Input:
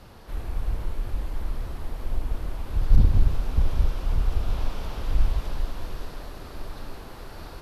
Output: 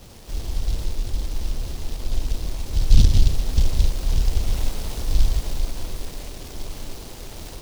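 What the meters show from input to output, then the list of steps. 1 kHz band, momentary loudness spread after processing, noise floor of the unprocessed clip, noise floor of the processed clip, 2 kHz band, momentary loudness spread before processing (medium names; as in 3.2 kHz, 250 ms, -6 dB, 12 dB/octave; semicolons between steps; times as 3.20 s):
-1.5 dB, 17 LU, -42 dBFS, -39 dBFS, +2.0 dB, 17 LU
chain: delay time shaken by noise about 4.2 kHz, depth 0.2 ms; trim +3.5 dB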